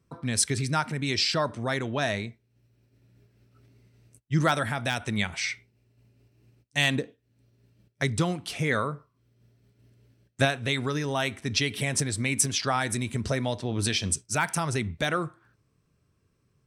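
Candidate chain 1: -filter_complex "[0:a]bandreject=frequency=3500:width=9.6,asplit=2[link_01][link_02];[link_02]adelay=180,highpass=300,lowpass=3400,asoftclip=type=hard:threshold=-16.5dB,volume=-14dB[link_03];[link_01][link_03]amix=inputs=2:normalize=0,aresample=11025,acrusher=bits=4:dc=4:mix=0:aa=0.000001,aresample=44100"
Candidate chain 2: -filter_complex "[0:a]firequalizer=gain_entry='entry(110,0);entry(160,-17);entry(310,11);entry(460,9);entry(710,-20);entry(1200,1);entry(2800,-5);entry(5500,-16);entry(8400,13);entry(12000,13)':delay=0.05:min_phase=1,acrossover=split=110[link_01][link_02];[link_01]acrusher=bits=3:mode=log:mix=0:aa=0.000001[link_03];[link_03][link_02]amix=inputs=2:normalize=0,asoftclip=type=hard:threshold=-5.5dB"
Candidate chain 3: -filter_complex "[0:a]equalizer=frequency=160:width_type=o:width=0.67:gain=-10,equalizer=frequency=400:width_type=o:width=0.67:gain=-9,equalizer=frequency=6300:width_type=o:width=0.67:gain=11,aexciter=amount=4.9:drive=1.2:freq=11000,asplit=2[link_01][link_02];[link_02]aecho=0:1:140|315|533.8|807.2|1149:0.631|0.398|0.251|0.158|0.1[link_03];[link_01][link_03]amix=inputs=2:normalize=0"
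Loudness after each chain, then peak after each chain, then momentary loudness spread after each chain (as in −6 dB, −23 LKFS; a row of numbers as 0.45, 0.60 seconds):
−31.0, −23.5, −24.0 LKFS; −9.0, −5.5, −3.0 dBFS; 9, 13, 19 LU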